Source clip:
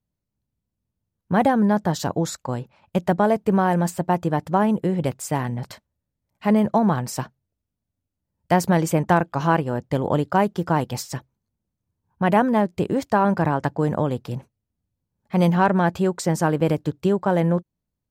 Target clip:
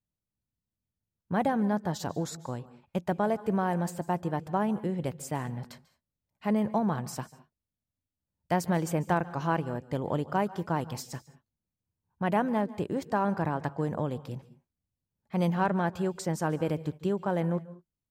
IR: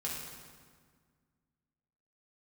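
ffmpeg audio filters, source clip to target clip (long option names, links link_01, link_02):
-filter_complex "[0:a]asplit=2[link_01][link_02];[1:a]atrim=start_sample=2205,atrim=end_sample=3969,adelay=141[link_03];[link_02][link_03]afir=irnorm=-1:irlink=0,volume=-18.5dB[link_04];[link_01][link_04]amix=inputs=2:normalize=0,volume=-9dB"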